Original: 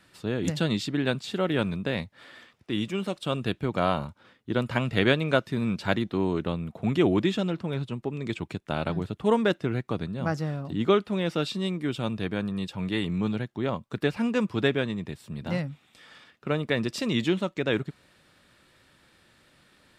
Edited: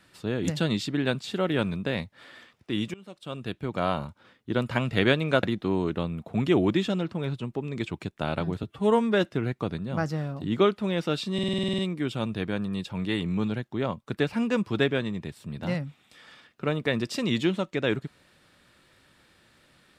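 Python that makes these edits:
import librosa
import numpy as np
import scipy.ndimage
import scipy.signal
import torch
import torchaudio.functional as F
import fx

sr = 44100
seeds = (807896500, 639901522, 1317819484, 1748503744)

y = fx.edit(x, sr, fx.fade_in_from(start_s=2.94, length_s=1.59, curve='qsin', floor_db=-23.5),
    fx.cut(start_s=5.43, length_s=0.49),
    fx.stretch_span(start_s=9.12, length_s=0.41, factor=1.5),
    fx.stutter(start_s=11.62, slice_s=0.05, count=10), tone=tone)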